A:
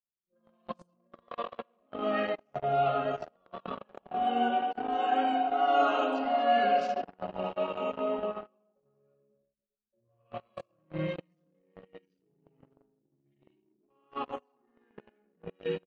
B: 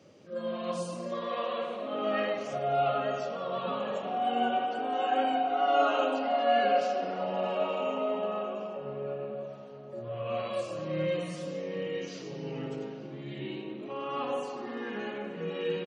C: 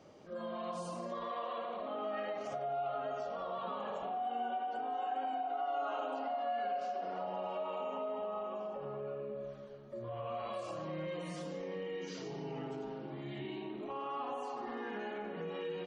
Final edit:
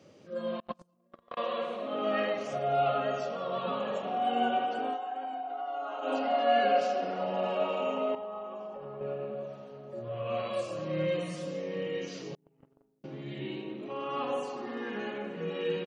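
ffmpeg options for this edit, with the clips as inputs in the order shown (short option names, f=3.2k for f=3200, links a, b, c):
-filter_complex "[0:a]asplit=2[a][b];[2:a]asplit=2[c][d];[1:a]asplit=5[e][f][g][h][i];[e]atrim=end=0.602[j];[a]atrim=start=0.598:end=1.372[k];[f]atrim=start=1.368:end=4.99[l];[c]atrim=start=4.89:end=6.12[m];[g]atrim=start=6.02:end=8.152[n];[d]atrim=start=8.148:end=9.012[o];[h]atrim=start=9.008:end=12.352[p];[b]atrim=start=12.348:end=13.042[q];[i]atrim=start=13.038[r];[j][k]acrossfade=d=0.004:c1=hsin:c2=hsin[s];[s][l]acrossfade=d=0.004:c1=hsin:c2=hsin[t];[t][m]acrossfade=d=0.1:c1=tri:c2=tri[u];[u][n]acrossfade=d=0.1:c1=tri:c2=tri[v];[v][o]acrossfade=d=0.004:c1=hsin:c2=hsin[w];[w][p]acrossfade=d=0.004:c1=hsin:c2=hsin[x];[x][q]acrossfade=d=0.004:c1=hsin:c2=hsin[y];[y][r]acrossfade=d=0.004:c1=hsin:c2=hsin"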